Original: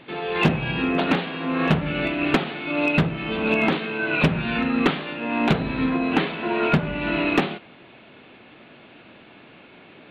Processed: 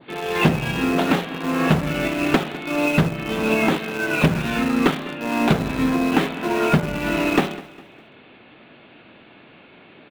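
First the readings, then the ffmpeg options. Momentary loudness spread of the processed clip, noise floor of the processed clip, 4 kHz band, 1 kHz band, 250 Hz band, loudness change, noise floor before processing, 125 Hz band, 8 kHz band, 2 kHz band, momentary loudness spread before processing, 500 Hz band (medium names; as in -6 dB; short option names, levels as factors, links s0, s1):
5 LU, -49 dBFS, +1.0 dB, +2.0 dB, +2.5 dB, +2.0 dB, -49 dBFS, +2.5 dB, no reading, +0.5 dB, 4 LU, +2.5 dB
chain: -filter_complex "[0:a]adynamicequalizer=threshold=0.0158:dfrequency=2600:dqfactor=1.3:tfrequency=2600:tqfactor=1.3:attack=5:release=100:ratio=0.375:range=1.5:mode=cutabove:tftype=bell,asplit=2[s0][s1];[s1]acrusher=bits=3:mix=0:aa=0.000001,volume=0.299[s2];[s0][s2]amix=inputs=2:normalize=0,aecho=1:1:203|406|609:0.119|0.0475|0.019"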